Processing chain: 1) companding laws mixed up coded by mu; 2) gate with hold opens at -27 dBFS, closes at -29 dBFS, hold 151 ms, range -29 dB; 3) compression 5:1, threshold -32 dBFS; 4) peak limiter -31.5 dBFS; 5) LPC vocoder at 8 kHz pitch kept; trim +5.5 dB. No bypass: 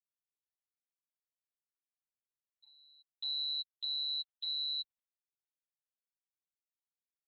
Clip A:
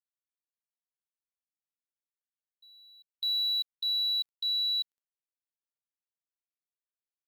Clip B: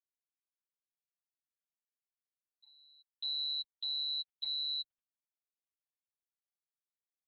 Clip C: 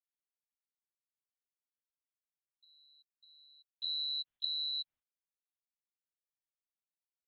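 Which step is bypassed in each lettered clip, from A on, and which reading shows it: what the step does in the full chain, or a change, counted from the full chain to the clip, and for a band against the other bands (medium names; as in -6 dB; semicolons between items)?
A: 5, crest factor change -5.5 dB; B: 3, mean gain reduction 4.0 dB; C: 1, distortion -25 dB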